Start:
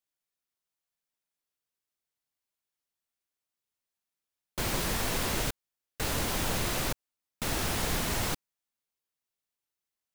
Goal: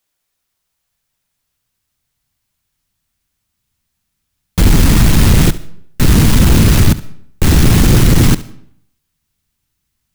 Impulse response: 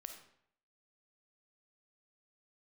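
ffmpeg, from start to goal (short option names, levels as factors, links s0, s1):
-filter_complex "[0:a]asubboost=boost=11.5:cutoff=150,aeval=exprs='0.631*sin(PI/2*4.47*val(0)/0.631)':c=same,asplit=2[s0][s1];[1:a]atrim=start_sample=2205,adelay=70[s2];[s1][s2]afir=irnorm=-1:irlink=0,volume=0.282[s3];[s0][s3]amix=inputs=2:normalize=0"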